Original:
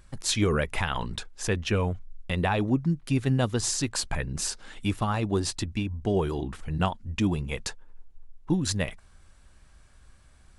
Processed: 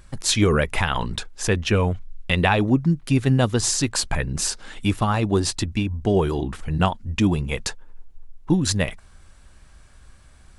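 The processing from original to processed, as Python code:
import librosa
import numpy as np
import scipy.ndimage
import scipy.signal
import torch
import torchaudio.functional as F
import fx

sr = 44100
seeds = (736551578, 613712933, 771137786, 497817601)

y = fx.peak_eq(x, sr, hz=2800.0, db=5.5, octaves=1.5, at=(1.91, 2.55))
y = y * librosa.db_to_amplitude(6.0)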